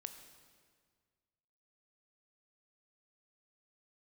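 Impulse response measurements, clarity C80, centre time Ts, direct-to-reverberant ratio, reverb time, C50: 10.0 dB, 22 ms, 7.5 dB, 1.8 s, 9.0 dB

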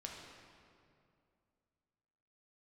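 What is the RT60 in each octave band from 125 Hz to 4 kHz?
2.8, 2.8, 2.6, 2.3, 2.0, 1.6 s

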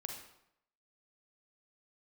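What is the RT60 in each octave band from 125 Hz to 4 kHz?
0.75, 0.75, 0.75, 0.75, 0.70, 0.60 s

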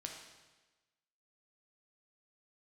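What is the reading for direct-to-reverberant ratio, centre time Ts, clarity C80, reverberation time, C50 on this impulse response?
1.0 dB, 42 ms, 6.0 dB, 1.2 s, 4.0 dB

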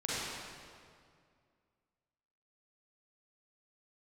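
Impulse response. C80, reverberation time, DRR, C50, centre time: -3.0 dB, 2.2 s, -9.0 dB, -6.0 dB, 0.165 s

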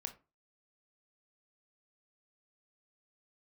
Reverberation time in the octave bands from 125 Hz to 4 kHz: 0.35, 0.35, 0.30, 0.30, 0.25, 0.15 s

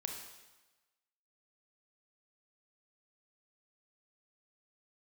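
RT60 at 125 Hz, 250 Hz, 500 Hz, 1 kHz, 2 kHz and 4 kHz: 1.0, 1.1, 1.1, 1.2, 1.1, 1.1 s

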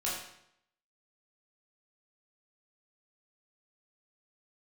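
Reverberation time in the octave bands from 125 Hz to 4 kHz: 0.80, 0.75, 0.75, 0.75, 0.70, 0.65 s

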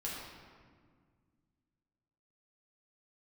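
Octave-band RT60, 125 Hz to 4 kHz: 2.8, 2.7, 1.9, 1.7, 1.5, 1.1 s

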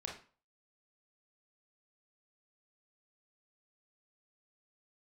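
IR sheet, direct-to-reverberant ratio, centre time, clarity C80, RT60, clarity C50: -1.0 dB, 29 ms, 12.0 dB, 0.40 s, 6.0 dB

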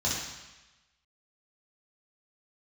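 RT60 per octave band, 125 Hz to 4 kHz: 1.0, 1.0, 1.0, 1.1, 1.2, 1.1 s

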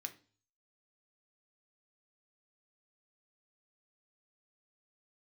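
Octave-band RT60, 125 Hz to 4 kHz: 0.70, 0.50, 0.40, 0.40, 0.35, 0.45 s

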